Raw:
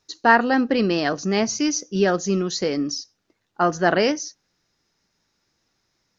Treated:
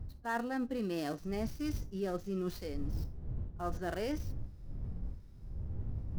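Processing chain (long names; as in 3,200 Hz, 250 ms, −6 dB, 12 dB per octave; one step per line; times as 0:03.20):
gap after every zero crossing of 0.067 ms
wind on the microphone 86 Hz −26 dBFS
harmonic and percussive parts rebalanced percussive −12 dB
reversed playback
downward compressor 5 to 1, threshold −35 dBFS, peak gain reduction 22 dB
reversed playback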